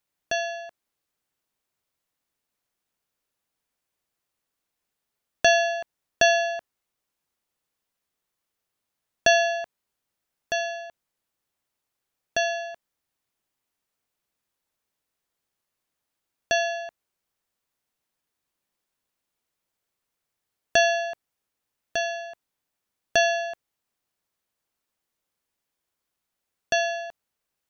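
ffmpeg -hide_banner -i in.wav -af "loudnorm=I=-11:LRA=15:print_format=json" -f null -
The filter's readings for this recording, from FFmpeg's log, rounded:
"input_i" : "-24.8",
"input_tp" : "-6.7",
"input_lra" : "9.2",
"input_thresh" : "-35.7",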